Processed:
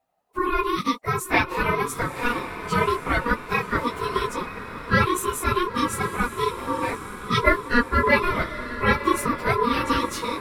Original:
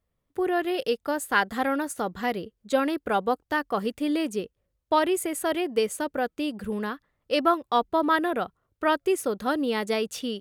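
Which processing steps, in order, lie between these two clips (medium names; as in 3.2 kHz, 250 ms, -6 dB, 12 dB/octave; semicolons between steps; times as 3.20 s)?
phase randomisation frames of 50 ms; echo that smears into a reverb 999 ms, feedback 47%, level -11 dB; ring modulator 720 Hz; trim +5.5 dB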